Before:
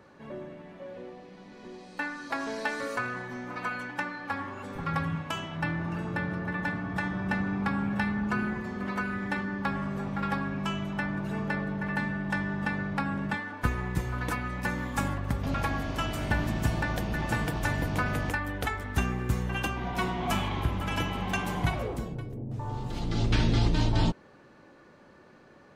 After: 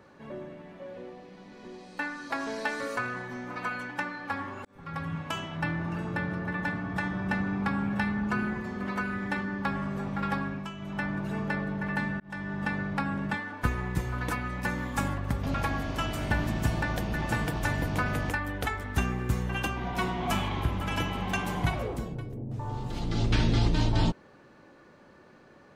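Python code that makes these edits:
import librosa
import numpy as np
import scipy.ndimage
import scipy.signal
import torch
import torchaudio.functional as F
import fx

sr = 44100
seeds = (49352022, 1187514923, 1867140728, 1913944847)

y = fx.edit(x, sr, fx.fade_in_span(start_s=4.65, length_s=0.63),
    fx.fade_down_up(start_s=10.36, length_s=0.75, db=-9.0, fade_s=0.34, curve='qsin'),
    fx.fade_in_span(start_s=12.2, length_s=0.58, curve='qsin'), tone=tone)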